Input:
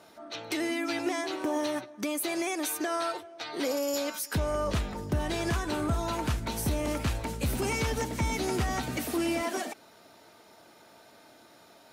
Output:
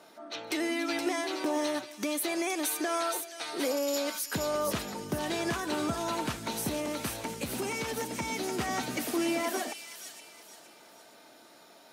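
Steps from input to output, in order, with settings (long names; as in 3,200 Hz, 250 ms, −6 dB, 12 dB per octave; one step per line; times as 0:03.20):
high-pass filter 180 Hz 12 dB per octave
0:06.76–0:08.59: downward compressor, threshold −30 dBFS, peak gain reduction 4 dB
delay with a high-pass on its return 471 ms, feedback 38%, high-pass 3,200 Hz, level −3.5 dB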